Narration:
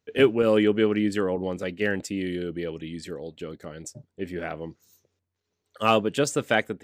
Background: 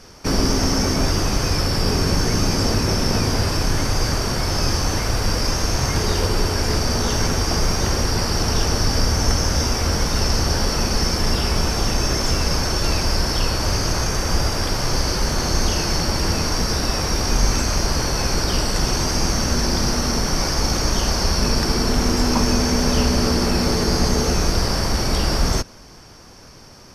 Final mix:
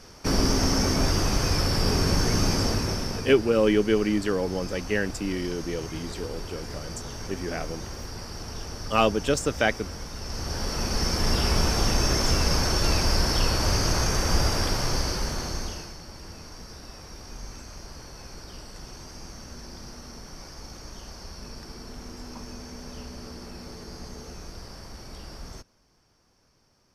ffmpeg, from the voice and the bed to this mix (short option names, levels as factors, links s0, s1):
-filter_complex "[0:a]adelay=3100,volume=0.944[s0];[1:a]volume=3.16,afade=t=out:st=2.49:d=0.85:silence=0.223872,afade=t=in:st=10.22:d=1.28:silence=0.199526,afade=t=out:st=14.54:d=1.41:silence=0.112202[s1];[s0][s1]amix=inputs=2:normalize=0"